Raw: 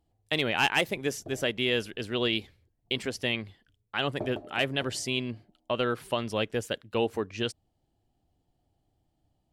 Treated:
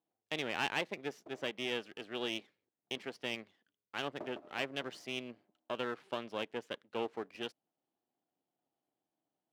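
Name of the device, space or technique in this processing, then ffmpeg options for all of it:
crystal radio: -af "highpass=220,lowpass=3300,aeval=exprs='if(lt(val(0),0),0.251*val(0),val(0))':channel_layout=same,highpass=170,volume=-6dB"

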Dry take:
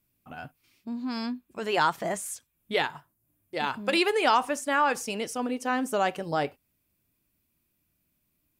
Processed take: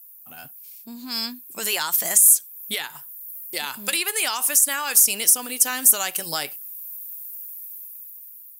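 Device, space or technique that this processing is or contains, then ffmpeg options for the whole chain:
FM broadcast chain: -filter_complex "[0:a]highpass=67,dynaudnorm=framelen=370:gausssize=7:maxgain=12dB,acrossover=split=1100|2200[link_01][link_02][link_03];[link_01]acompressor=threshold=-29dB:ratio=4[link_04];[link_02]acompressor=threshold=-25dB:ratio=4[link_05];[link_03]acompressor=threshold=-31dB:ratio=4[link_06];[link_04][link_05][link_06]amix=inputs=3:normalize=0,aemphasis=mode=production:type=75fm,alimiter=limit=-11.5dB:level=0:latency=1:release=495,asoftclip=type=hard:threshold=-13dB,lowpass=frequency=15000:width=0.5412,lowpass=frequency=15000:width=1.3066,aemphasis=mode=production:type=75fm,equalizer=frequency=77:width=1.3:gain=-3.5,volume=-4dB"

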